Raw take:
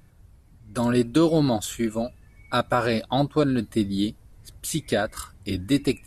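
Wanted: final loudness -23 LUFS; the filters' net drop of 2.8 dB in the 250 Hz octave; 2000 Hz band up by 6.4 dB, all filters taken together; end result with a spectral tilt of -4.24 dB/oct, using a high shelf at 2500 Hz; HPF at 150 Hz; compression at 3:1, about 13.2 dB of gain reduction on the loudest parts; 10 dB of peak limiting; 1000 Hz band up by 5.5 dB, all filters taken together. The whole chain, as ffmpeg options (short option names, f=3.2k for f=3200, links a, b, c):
-af "highpass=150,equalizer=f=250:t=o:g=-3.5,equalizer=f=1k:t=o:g=6,equalizer=f=2k:t=o:g=4.5,highshelf=f=2.5k:g=4,acompressor=threshold=-32dB:ratio=3,volume=14.5dB,alimiter=limit=-11dB:level=0:latency=1"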